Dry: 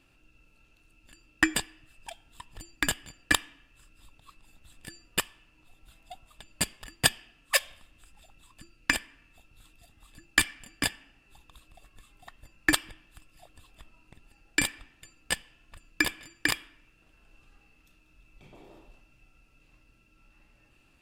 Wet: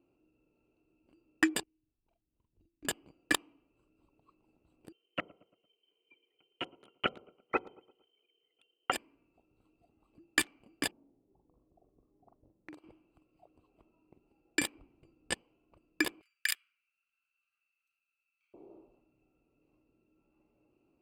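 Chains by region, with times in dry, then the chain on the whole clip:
1.63–2.85 passive tone stack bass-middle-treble 10-0-1 + doubler 45 ms -3 dB + decimation joined by straight lines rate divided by 4×
4.92–8.92 low-pass opened by the level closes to 930 Hz, open at -24.5 dBFS + feedback echo 0.114 s, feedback 45%, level -19 dB + inverted band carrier 3100 Hz
10.91–12.84 low-pass opened by the level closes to 480 Hz, open at -25 dBFS + compressor 5:1, threshold -43 dBFS + doubler 43 ms -4.5 dB
14.74–15.34 steep low-pass 11000 Hz + low shelf 170 Hz +11.5 dB
16.21–18.54 steep high-pass 1400 Hz 48 dB/oct + high shelf 8300 Hz +8.5 dB
whole clip: Wiener smoothing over 25 samples; HPF 220 Hz 6 dB/oct; bell 370 Hz +9.5 dB 0.98 oct; gain -6 dB

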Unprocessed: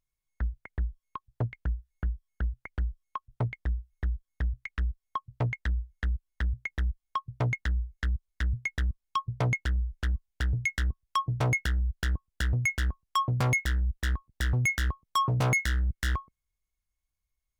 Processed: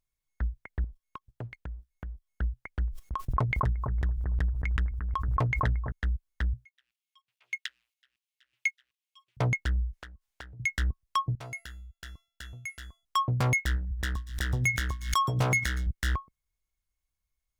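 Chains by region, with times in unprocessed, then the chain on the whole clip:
0.84–2.27 compressor 4:1, threshold -41 dBFS + sample leveller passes 1
2.88–5.92 gate -58 dBFS, range -17 dB + analogue delay 0.227 s, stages 2048, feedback 39%, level -6.5 dB + backwards sustainer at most 23 dB/s
6.65–9.37 sample leveller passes 1 + auto swell 0.255 s + resonant high-pass 2700 Hz, resonance Q 2.8
9.93–10.6 high shelf 4800 Hz +11 dB + compressor 10:1, threshold -41 dBFS + overdrive pedal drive 13 dB, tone 2200 Hz, clips at -21 dBFS
11.35–13.05 tilt shelf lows -4.5 dB, about 1100 Hz + resonator 680 Hz, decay 0.47 s, mix 80%
13.75–15.87 notches 60/120/180/240/300 Hz + thin delay 0.118 s, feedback 37%, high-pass 3600 Hz, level -12.5 dB + backwards sustainer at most 94 dB/s
whole clip: dry

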